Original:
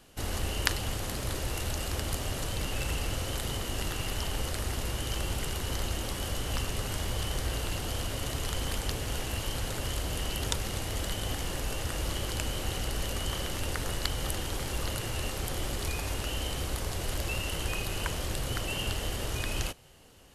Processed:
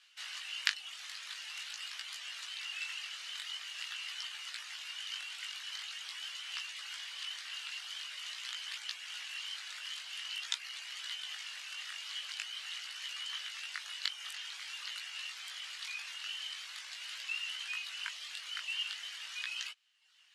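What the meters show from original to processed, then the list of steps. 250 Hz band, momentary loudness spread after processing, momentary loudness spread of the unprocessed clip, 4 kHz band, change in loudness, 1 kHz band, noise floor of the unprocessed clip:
under -40 dB, 5 LU, 2 LU, -1.5 dB, -6.5 dB, -14.5 dB, -36 dBFS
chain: low-pass 4 kHz 12 dB/octave; reverb removal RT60 0.86 s; Bessel high-pass 2.4 kHz, order 4; chorus 0.46 Hz, delay 16 ms, depth 4.7 ms; trim +7 dB

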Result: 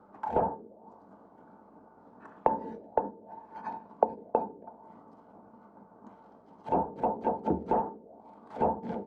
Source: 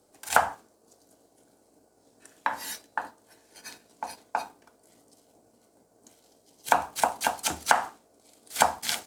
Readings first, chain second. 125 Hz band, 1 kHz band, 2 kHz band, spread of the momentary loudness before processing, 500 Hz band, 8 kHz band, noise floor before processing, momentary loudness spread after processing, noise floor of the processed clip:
+7.0 dB, -3.0 dB, -22.0 dB, 20 LU, +4.0 dB, under -40 dB, -65 dBFS, 17 LU, -57 dBFS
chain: small resonant body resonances 200/890 Hz, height 14 dB, ringing for 85 ms; overload inside the chain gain 18.5 dB; touch-sensitive low-pass 450–1300 Hz down, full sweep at -31.5 dBFS; trim +3 dB

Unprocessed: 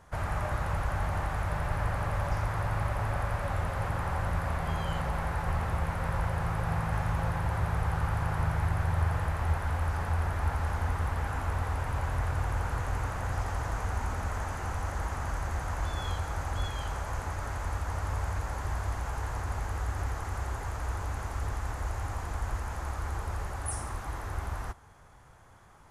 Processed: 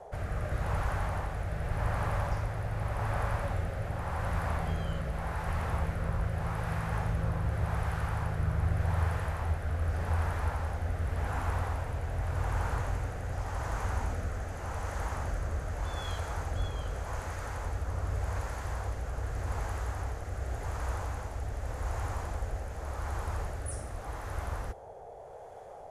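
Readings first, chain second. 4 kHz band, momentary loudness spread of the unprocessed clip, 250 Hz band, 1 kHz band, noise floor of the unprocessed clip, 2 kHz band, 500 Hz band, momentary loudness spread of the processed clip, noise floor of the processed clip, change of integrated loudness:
-2.5 dB, 5 LU, -1.5 dB, -3.0 dB, -49 dBFS, -3.0 dB, 0.0 dB, 6 LU, -45 dBFS, -1.5 dB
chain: rotary cabinet horn 0.85 Hz; band noise 420–830 Hz -48 dBFS

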